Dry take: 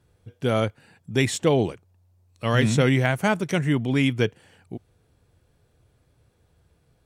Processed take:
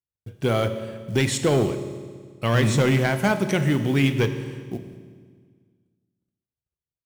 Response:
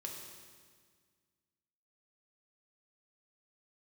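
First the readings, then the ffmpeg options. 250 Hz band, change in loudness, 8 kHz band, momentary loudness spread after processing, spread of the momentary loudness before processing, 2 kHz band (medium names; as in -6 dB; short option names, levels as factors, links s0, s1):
+0.5 dB, +0.5 dB, +2.5 dB, 15 LU, 12 LU, 0.0 dB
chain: -filter_complex "[0:a]volume=5.31,asoftclip=hard,volume=0.188,acompressor=threshold=0.0398:ratio=1.5,acrusher=bits=7:mode=log:mix=0:aa=0.000001,agate=range=0.00708:threshold=0.00178:ratio=16:detection=peak,asplit=2[s0][s1];[1:a]atrim=start_sample=2205[s2];[s1][s2]afir=irnorm=-1:irlink=0,volume=1.12[s3];[s0][s3]amix=inputs=2:normalize=0"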